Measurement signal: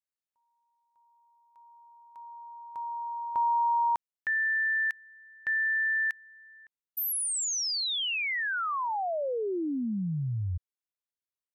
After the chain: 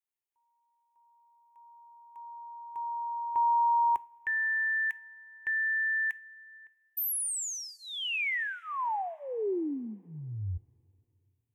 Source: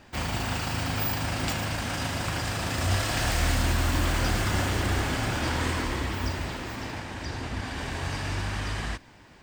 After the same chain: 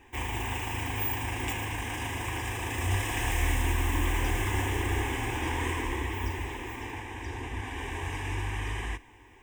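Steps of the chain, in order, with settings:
phaser with its sweep stopped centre 910 Hz, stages 8
coupled-rooms reverb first 0.32 s, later 2.7 s, from −18 dB, DRR 15.5 dB

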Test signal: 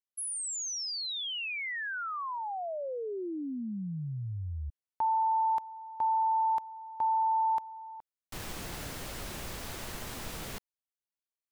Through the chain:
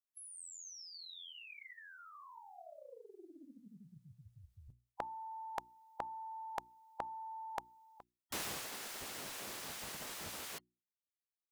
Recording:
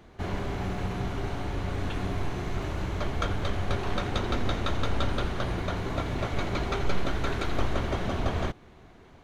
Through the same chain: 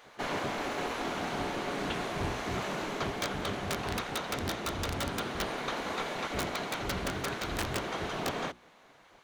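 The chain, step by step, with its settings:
gate on every frequency bin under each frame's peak −10 dB weak
high-shelf EQ 5,100 Hz +4.5 dB
mains-hum notches 60/120/180/240/300/360 Hz
wrap-around overflow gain 22 dB
speech leveller within 5 dB 0.5 s
highs frequency-modulated by the lows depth 0.26 ms

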